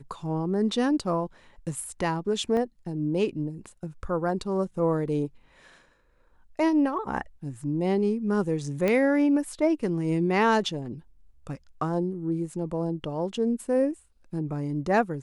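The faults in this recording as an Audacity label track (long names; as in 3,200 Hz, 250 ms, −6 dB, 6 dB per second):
2.570000	2.570000	drop-out 2 ms
8.880000	8.880000	click −13 dBFS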